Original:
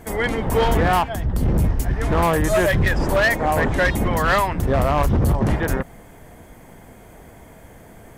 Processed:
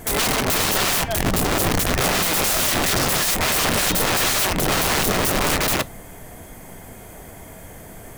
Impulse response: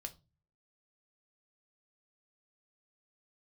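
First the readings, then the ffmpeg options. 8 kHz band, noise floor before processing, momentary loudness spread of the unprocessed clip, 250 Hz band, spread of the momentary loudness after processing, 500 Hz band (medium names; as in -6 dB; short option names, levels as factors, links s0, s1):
+14.5 dB, -45 dBFS, 5 LU, -2.5 dB, 2 LU, -4.0 dB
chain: -filter_complex "[0:a]highshelf=f=4500:g=9.5,aeval=exprs='(mod(7.94*val(0)+1,2)-1)/7.94':c=same,asplit=2[s0][s1];[1:a]atrim=start_sample=2205,asetrate=52920,aresample=44100[s2];[s1][s2]afir=irnorm=-1:irlink=0,volume=0.891[s3];[s0][s3]amix=inputs=2:normalize=0"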